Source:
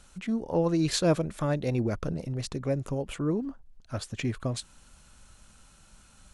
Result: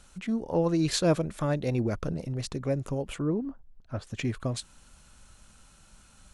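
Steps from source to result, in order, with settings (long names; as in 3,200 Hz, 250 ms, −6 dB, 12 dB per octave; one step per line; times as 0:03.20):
0:03.22–0:04.07: low-pass filter 1,400 Hz 6 dB per octave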